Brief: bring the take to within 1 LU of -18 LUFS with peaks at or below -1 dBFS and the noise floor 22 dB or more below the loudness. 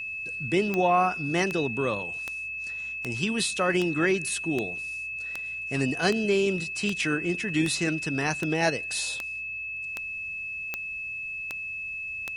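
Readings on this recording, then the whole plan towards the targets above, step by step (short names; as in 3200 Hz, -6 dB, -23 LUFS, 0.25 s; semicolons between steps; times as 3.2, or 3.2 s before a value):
clicks 16; steady tone 2600 Hz; tone level -32 dBFS; loudness -27.5 LUFS; peak -9.0 dBFS; loudness target -18.0 LUFS
-> de-click; notch 2600 Hz, Q 30; gain +9.5 dB; limiter -1 dBFS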